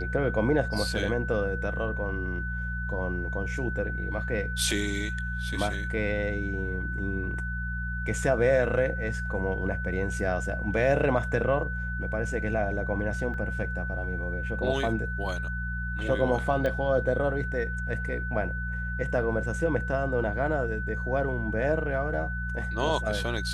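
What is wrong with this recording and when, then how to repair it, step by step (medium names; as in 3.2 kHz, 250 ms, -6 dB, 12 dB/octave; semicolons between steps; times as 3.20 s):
hum 60 Hz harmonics 3 -33 dBFS
whine 1.5 kHz -34 dBFS
13.34 s: dropout 2.3 ms
16.66 s: pop -17 dBFS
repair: de-click; band-stop 1.5 kHz, Q 30; de-hum 60 Hz, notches 3; interpolate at 13.34 s, 2.3 ms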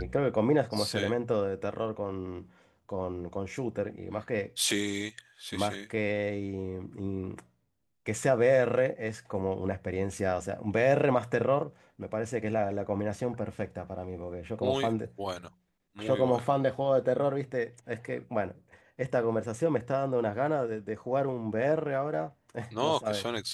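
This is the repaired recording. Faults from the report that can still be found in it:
16.66 s: pop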